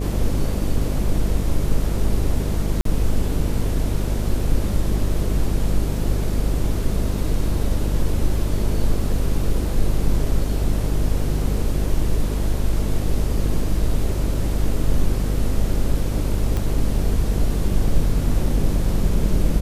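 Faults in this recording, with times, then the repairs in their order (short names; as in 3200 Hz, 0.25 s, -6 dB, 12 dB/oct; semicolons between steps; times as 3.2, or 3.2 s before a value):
buzz 50 Hz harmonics 13 -23 dBFS
2.81–2.85 gap 43 ms
16.57 pop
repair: de-click; de-hum 50 Hz, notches 13; interpolate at 2.81, 43 ms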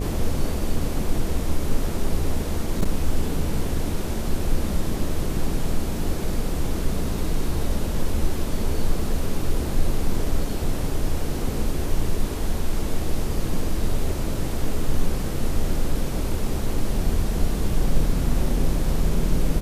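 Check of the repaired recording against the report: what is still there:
none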